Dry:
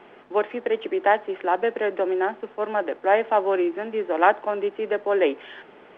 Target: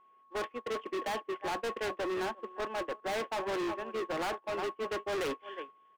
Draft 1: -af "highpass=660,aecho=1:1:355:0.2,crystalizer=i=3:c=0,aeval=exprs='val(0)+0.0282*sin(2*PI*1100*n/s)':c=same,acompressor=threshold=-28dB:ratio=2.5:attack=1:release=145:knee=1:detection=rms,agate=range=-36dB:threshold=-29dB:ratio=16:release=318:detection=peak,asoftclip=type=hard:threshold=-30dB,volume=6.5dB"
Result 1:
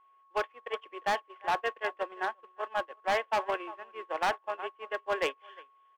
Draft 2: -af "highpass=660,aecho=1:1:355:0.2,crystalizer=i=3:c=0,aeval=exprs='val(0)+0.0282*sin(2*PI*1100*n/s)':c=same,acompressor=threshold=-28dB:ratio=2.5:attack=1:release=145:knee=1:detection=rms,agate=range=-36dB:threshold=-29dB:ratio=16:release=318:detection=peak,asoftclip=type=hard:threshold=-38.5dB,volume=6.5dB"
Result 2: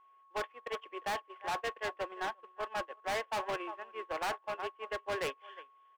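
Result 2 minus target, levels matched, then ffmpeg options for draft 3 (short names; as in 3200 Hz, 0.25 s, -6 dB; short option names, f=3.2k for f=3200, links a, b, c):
500 Hz band -2.5 dB
-af "aecho=1:1:355:0.2,crystalizer=i=3:c=0,aeval=exprs='val(0)+0.0282*sin(2*PI*1100*n/s)':c=same,acompressor=threshold=-28dB:ratio=2.5:attack=1:release=145:knee=1:detection=rms,agate=range=-36dB:threshold=-29dB:ratio=16:release=318:detection=peak,asoftclip=type=hard:threshold=-38.5dB,volume=6.5dB"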